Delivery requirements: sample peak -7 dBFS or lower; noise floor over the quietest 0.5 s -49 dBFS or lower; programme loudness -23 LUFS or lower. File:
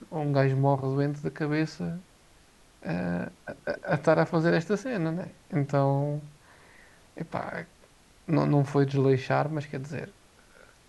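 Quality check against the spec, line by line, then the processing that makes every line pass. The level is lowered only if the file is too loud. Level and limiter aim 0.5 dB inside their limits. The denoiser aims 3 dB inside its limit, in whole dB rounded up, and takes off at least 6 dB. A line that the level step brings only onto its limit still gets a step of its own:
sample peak -8.5 dBFS: OK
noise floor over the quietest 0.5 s -58 dBFS: OK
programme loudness -28.0 LUFS: OK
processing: none

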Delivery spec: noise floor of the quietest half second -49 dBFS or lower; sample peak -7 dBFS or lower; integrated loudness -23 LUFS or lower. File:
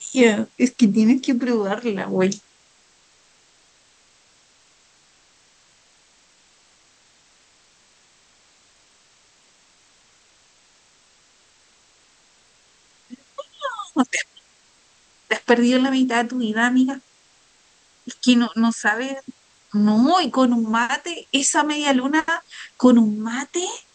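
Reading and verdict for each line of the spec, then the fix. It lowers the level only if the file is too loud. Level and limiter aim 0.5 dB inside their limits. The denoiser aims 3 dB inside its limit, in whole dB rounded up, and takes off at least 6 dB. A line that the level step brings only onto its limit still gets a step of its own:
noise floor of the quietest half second -57 dBFS: OK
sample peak -3.5 dBFS: fail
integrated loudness -19.5 LUFS: fail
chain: gain -4 dB

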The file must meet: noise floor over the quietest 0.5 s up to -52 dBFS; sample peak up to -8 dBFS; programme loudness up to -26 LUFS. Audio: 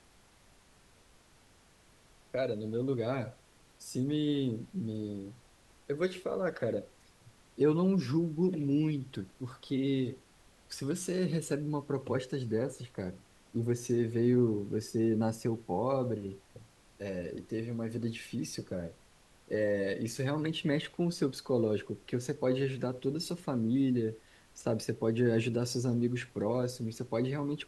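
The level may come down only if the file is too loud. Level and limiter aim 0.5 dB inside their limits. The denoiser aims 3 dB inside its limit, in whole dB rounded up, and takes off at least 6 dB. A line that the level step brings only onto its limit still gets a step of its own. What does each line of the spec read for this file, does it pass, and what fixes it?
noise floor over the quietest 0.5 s -62 dBFS: OK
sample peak -16.5 dBFS: OK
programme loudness -33.5 LUFS: OK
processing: none

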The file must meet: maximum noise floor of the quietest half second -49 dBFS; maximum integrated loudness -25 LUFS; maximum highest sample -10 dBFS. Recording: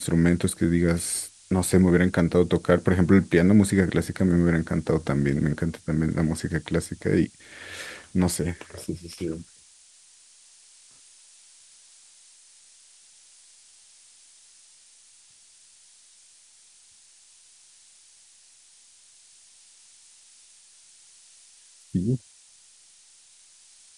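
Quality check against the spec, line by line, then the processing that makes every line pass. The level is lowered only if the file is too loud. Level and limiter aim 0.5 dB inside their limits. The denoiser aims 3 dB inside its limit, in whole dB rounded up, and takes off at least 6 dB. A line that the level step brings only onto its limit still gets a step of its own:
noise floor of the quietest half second -55 dBFS: OK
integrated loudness -24.0 LUFS: fail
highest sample -4.0 dBFS: fail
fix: gain -1.5 dB; limiter -10.5 dBFS

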